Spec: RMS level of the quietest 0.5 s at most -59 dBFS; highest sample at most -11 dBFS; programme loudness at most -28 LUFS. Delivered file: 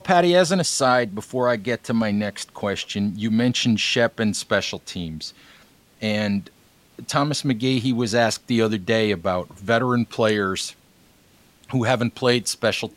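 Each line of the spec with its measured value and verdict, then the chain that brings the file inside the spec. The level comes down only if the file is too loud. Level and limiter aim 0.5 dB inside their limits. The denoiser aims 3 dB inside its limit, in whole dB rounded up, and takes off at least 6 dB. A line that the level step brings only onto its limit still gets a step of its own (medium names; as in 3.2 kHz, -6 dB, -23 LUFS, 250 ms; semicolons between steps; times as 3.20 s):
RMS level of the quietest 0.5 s -55 dBFS: fail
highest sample -5.5 dBFS: fail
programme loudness -22.0 LUFS: fail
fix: trim -6.5 dB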